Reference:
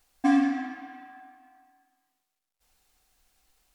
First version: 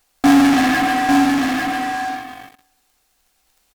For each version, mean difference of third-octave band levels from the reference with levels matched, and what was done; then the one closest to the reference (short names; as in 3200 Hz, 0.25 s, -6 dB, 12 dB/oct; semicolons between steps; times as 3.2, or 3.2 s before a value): 16.5 dB: low shelf 110 Hz -7.5 dB; in parallel at -8 dB: fuzz box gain 49 dB, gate -59 dBFS; on the sum: echo 0.849 s -4 dB; gain +5.5 dB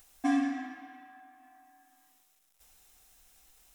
1.0 dB: high shelf 4600 Hz +7 dB; notch 4500 Hz, Q 8.3; upward compressor, threshold -45 dBFS; gain -6 dB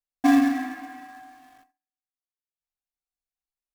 2.5 dB: notch 3200 Hz, Q 16; gate -60 dBFS, range -31 dB; in parallel at -6 dB: companded quantiser 4-bit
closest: second